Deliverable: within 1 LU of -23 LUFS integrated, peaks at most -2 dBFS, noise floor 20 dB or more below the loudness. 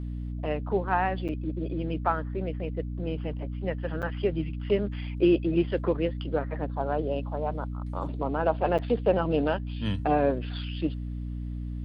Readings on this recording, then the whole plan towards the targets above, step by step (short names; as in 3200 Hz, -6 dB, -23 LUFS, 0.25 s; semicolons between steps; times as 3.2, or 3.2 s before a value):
dropouts 3; longest dropout 7.2 ms; hum 60 Hz; harmonics up to 300 Hz; hum level -31 dBFS; loudness -29.0 LUFS; peak -11.0 dBFS; loudness target -23.0 LUFS
-> interpolate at 1.28/4.02/8.78, 7.2 ms; notches 60/120/180/240/300 Hz; gain +6 dB